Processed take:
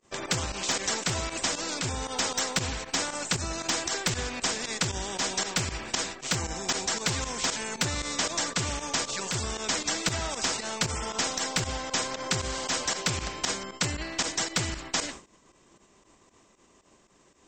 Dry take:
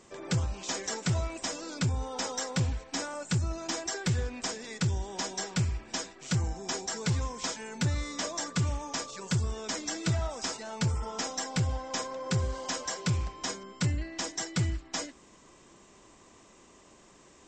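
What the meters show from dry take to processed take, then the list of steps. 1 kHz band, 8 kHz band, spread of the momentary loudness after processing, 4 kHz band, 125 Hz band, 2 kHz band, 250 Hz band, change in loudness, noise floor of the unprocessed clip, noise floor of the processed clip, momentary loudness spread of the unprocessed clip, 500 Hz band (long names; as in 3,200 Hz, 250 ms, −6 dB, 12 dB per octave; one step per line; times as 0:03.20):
+5.0 dB, +7.0 dB, 3 LU, +7.5 dB, −6.0 dB, +7.0 dB, −0.5 dB, +3.5 dB, −57 dBFS, −62 dBFS, 4 LU, +3.0 dB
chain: downward expander −43 dBFS
fake sidechain pumping 116 BPM, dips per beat 2, −13 dB, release 72 ms
every bin compressed towards the loudest bin 2 to 1
level +8.5 dB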